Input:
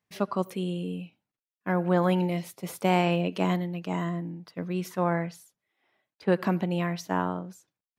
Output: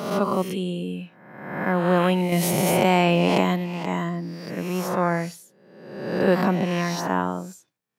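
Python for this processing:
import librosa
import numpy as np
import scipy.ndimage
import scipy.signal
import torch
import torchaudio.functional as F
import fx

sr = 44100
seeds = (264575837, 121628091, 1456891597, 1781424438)

y = fx.spec_swells(x, sr, rise_s=1.04)
y = scipy.signal.sosfilt(scipy.signal.butter(2, 94.0, 'highpass', fs=sr, output='sos'), y)
y = fx.env_flatten(y, sr, amount_pct=70, at=(2.32, 3.41))
y = y * librosa.db_to_amplitude(3.0)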